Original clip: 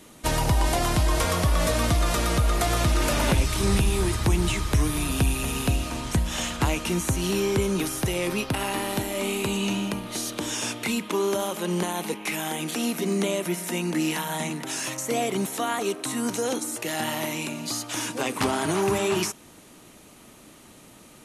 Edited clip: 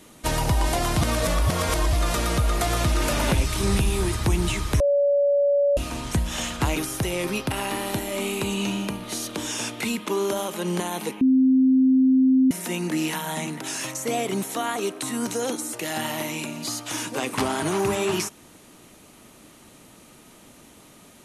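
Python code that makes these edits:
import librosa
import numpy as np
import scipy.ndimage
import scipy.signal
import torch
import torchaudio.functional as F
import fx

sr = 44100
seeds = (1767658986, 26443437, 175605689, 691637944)

y = fx.edit(x, sr, fx.reverse_span(start_s=1.01, length_s=0.92),
    fx.bleep(start_s=4.8, length_s=0.97, hz=569.0, db=-16.5),
    fx.cut(start_s=6.76, length_s=1.03),
    fx.bleep(start_s=12.24, length_s=1.3, hz=261.0, db=-14.0), tone=tone)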